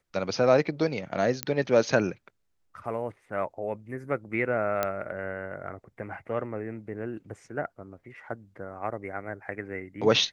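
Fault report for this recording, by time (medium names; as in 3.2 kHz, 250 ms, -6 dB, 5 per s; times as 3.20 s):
1.43 s: pop -10 dBFS
4.83 s: pop -12 dBFS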